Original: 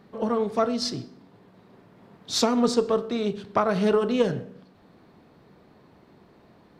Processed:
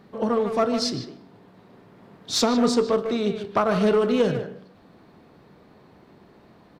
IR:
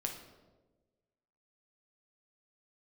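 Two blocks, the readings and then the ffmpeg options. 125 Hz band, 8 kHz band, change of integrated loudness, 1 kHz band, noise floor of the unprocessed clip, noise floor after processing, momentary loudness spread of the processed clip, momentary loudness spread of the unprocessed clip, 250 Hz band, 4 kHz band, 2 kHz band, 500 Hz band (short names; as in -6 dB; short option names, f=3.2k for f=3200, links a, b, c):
+2.0 dB, +2.0 dB, +2.0 dB, +1.5 dB, -56 dBFS, -53 dBFS, 9 LU, 7 LU, +2.0 dB, +2.0 dB, +2.5 dB, +2.0 dB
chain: -filter_complex "[0:a]asplit=2[a][b];[b]aeval=exprs='0.112*(abs(mod(val(0)/0.112+3,4)-2)-1)':c=same,volume=-11dB[c];[a][c]amix=inputs=2:normalize=0,asplit=2[d][e];[e]adelay=150,highpass=300,lowpass=3.4k,asoftclip=type=hard:threshold=-19dB,volume=-7dB[f];[d][f]amix=inputs=2:normalize=0"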